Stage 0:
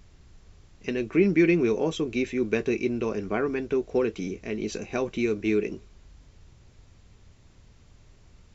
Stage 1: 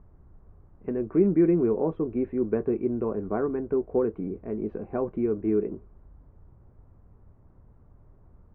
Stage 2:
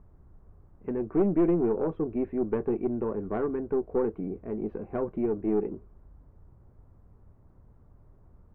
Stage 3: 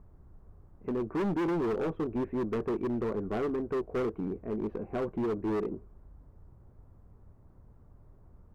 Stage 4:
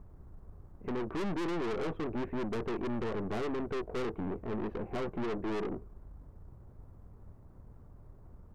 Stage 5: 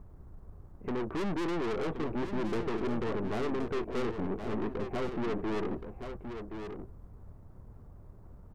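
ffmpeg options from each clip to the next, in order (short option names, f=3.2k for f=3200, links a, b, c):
-af "lowpass=f=1.2k:w=0.5412,lowpass=f=1.2k:w=1.3066"
-af "aeval=exprs='(tanh(6.31*val(0)+0.4)-tanh(0.4))/6.31':c=same"
-af "volume=27.5dB,asoftclip=hard,volume=-27.5dB"
-af "aeval=exprs='(tanh(79.4*val(0)+0.5)-tanh(0.5))/79.4':c=same,volume=5dB"
-af "aecho=1:1:1073:0.398,volume=1.5dB"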